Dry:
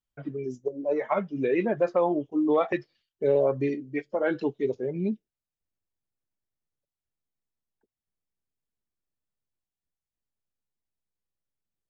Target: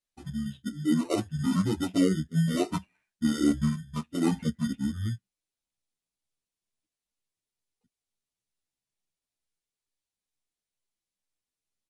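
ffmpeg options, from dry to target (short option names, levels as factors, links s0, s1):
-filter_complex "[0:a]asplit=2[s0][s1];[s1]acrusher=samples=14:mix=1:aa=0.000001,volume=0.447[s2];[s0][s2]amix=inputs=2:normalize=0,bass=f=250:g=-5,treble=f=4000:g=7,asetrate=23361,aresample=44100,atempo=1.88775,asplit=2[s3][s4];[s4]adelay=10.2,afreqshift=2.2[s5];[s3][s5]amix=inputs=2:normalize=1"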